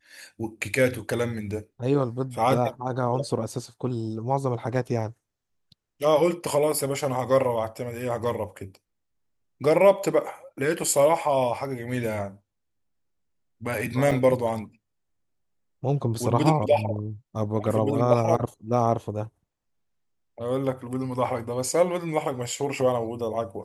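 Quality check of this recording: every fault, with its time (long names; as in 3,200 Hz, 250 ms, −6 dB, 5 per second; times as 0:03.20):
0:14.11–0:14.12: drop-out 5.2 ms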